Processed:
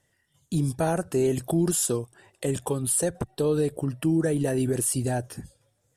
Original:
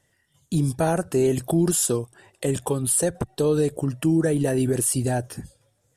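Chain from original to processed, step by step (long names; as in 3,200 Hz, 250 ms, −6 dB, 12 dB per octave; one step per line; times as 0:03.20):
0:03.31–0:04.20: parametric band 6,600 Hz −10.5 dB 0.3 octaves
level −3 dB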